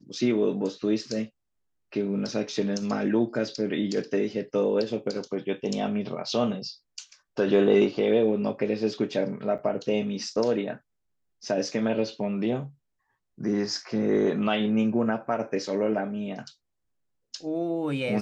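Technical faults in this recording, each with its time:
9.58–9.59 s: dropout 7.4 ms

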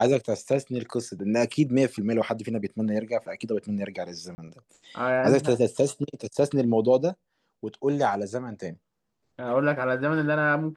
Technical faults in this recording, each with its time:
4.35–4.38 s: dropout 30 ms

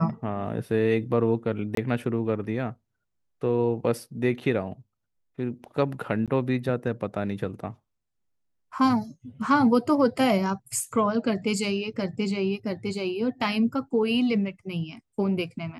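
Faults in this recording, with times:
1.75–1.77 s: dropout 23 ms
6.26–6.28 s: dropout 17 ms

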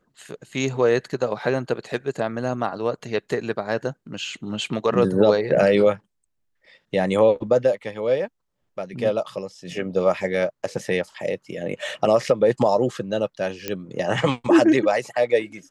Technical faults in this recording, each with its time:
13.68 s: pop -10 dBFS

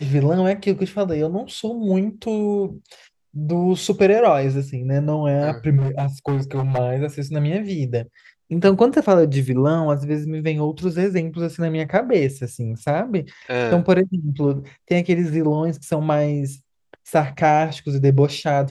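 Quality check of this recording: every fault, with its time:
5.77–6.79 s: clipped -17 dBFS

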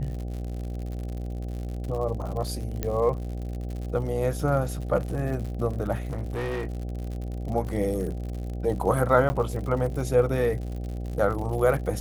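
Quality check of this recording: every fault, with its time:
buzz 60 Hz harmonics 13 -32 dBFS
crackle 94 per s -34 dBFS
2.83 s: pop -13 dBFS
6.05–6.83 s: clipped -26 dBFS
9.29–9.30 s: dropout 10 ms

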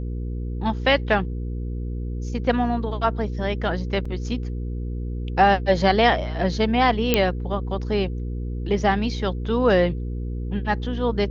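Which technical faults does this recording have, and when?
hum 60 Hz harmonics 8 -28 dBFS
4.05 s: dropout 4.6 ms
7.14 s: pop -3 dBFS

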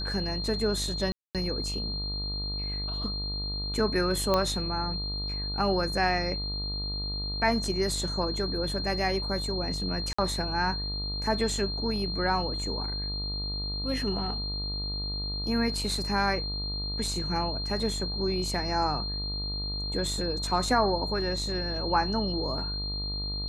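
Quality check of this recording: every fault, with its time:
buzz 50 Hz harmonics 27 -35 dBFS
whine 4.2 kHz -33 dBFS
1.12–1.35 s: dropout 227 ms
4.34 s: pop -12 dBFS
10.13–10.19 s: dropout 55 ms

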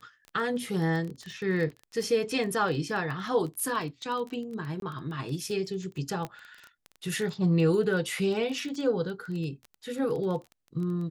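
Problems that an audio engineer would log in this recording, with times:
crackle 17 per s -33 dBFS
4.80–4.82 s: dropout 22 ms
6.25 s: pop -21 dBFS

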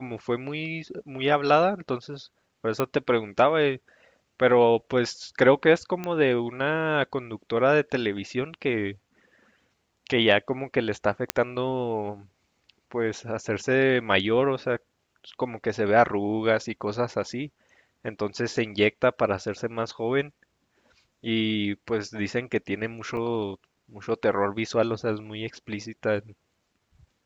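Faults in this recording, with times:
2.80 s: pop -11 dBFS
6.04 s: pop -17 dBFS
11.30 s: pop -6 dBFS
23.17 s: dropout 4.1 ms

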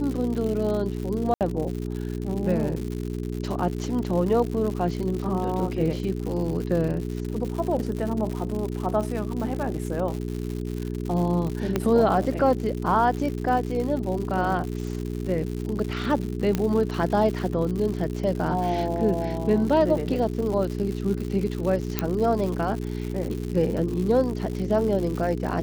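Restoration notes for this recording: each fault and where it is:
crackle 150 per s -30 dBFS
hum 60 Hz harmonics 7 -30 dBFS
1.34–1.41 s: dropout 68 ms
11.76 s: pop -10 dBFS
16.55 s: pop -11 dBFS
21.99 s: pop -7 dBFS

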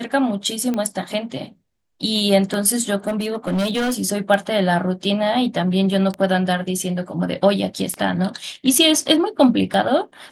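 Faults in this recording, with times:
tick 33 1/3 rpm -12 dBFS
3.07–3.95 s: clipped -17 dBFS

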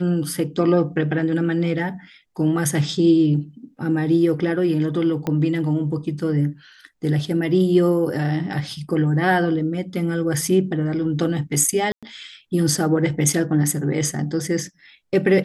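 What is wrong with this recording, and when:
5.27 s: pop -12 dBFS
11.92–12.03 s: dropout 106 ms

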